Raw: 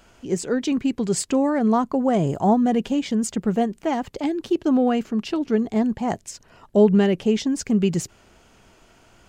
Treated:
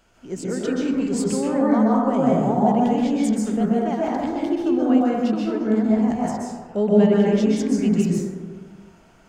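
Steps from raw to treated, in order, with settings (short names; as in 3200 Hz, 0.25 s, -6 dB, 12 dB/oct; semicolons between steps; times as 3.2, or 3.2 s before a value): plate-style reverb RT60 1.6 s, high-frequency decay 0.3×, pre-delay 0.115 s, DRR -6 dB; gain -7 dB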